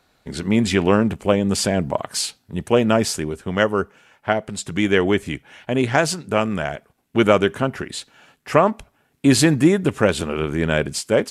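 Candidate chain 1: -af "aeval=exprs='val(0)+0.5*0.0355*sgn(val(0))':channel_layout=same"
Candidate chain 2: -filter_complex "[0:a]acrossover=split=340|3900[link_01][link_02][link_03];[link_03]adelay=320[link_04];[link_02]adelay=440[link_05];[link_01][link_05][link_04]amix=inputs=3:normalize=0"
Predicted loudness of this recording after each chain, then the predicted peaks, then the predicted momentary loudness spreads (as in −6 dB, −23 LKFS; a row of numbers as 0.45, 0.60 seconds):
−19.5, −22.0 LKFS; −1.5, −2.5 dBFS; 12, 9 LU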